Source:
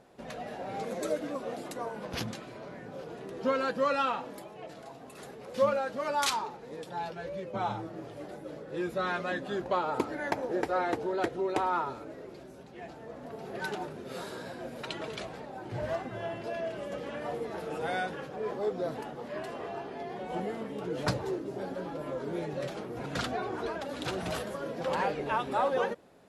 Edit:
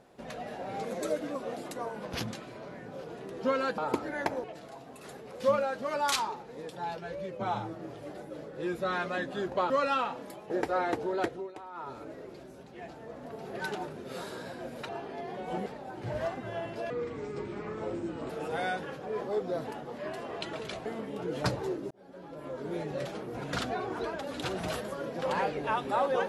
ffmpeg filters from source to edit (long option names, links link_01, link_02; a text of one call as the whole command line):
ffmpeg -i in.wav -filter_complex "[0:a]asplit=14[link_01][link_02][link_03][link_04][link_05][link_06][link_07][link_08][link_09][link_10][link_11][link_12][link_13][link_14];[link_01]atrim=end=3.782[link_15];[link_02]atrim=start=9.838:end=10.502[link_16];[link_03]atrim=start=4.578:end=9.842[link_17];[link_04]atrim=start=3.778:end=4.582[link_18];[link_05]atrim=start=10.498:end=11.52,asetpts=PTS-STARTPTS,afade=type=out:start_time=0.732:duration=0.29:silence=0.158489[link_19];[link_06]atrim=start=11.52:end=11.74,asetpts=PTS-STARTPTS,volume=-16dB[link_20];[link_07]atrim=start=11.74:end=14.892,asetpts=PTS-STARTPTS,afade=type=in:duration=0.29:silence=0.158489[link_21];[link_08]atrim=start=19.708:end=20.482[link_22];[link_09]atrim=start=15.338:end=16.584[link_23];[link_10]atrim=start=16.58:end=17.6,asetpts=PTS-STARTPTS,asetrate=32193,aresample=44100,atrim=end_sample=61619,asetpts=PTS-STARTPTS[link_24];[link_11]atrim=start=17.596:end=19.712[link_25];[link_12]atrim=start=14.888:end=15.342[link_26];[link_13]atrim=start=20.478:end=21.53,asetpts=PTS-STARTPTS,afade=type=out:start_time=1.048:duration=0.004:curve=hsin[link_27];[link_14]atrim=start=21.53,asetpts=PTS-STARTPTS,afade=type=in:duration=0.91[link_28];[link_15][link_16]acrossfade=duration=0.004:curve1=hsin:curve2=hsin[link_29];[link_29][link_17]acrossfade=duration=0.004:curve1=hsin:curve2=hsin[link_30];[link_30][link_18]acrossfade=duration=0.004:curve1=hsin:curve2=hsin[link_31];[link_19][link_20][link_21]concat=n=3:v=0:a=1[link_32];[link_31][link_32]acrossfade=duration=0.004:curve1=hsin:curve2=hsin[link_33];[link_33][link_22]acrossfade=duration=0.004:curve1=hsin:curve2=hsin[link_34];[link_34][link_23]acrossfade=duration=0.004:curve1=hsin:curve2=hsin[link_35];[link_35][link_24]acrossfade=duration=0.004:curve1=hsin:curve2=hsin[link_36];[link_36][link_25]acrossfade=duration=0.004:curve1=hsin:curve2=hsin[link_37];[link_37][link_26]acrossfade=duration=0.004:curve1=hsin:curve2=hsin[link_38];[link_27][link_28]concat=n=2:v=0:a=1[link_39];[link_38][link_39]acrossfade=duration=0.004:curve1=hsin:curve2=hsin" out.wav